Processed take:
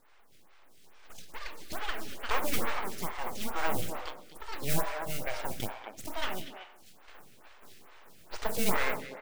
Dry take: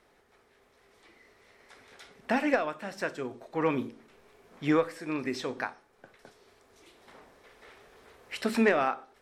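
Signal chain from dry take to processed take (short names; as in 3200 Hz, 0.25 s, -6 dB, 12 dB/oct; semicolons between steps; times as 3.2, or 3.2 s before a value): de-hum 54.84 Hz, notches 14; in parallel at -2.5 dB: compressor, threshold -35 dBFS, peak gain reduction 15.5 dB; on the sum: modulation noise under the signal 11 dB; full-wave rectifier; on a send: tape echo 63 ms, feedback 78%, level -11 dB, low-pass 4000 Hz; on the sum: echoes that change speed 96 ms, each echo +6 st, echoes 3, each echo -6 dB; speakerphone echo 0.24 s, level -8 dB; photocell phaser 2.3 Hz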